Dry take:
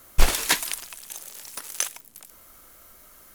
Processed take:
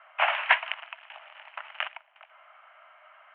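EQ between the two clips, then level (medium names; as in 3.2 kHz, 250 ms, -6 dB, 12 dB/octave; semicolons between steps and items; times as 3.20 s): Chebyshev band-pass 620–3000 Hz, order 5; distance through air 100 m; +6.0 dB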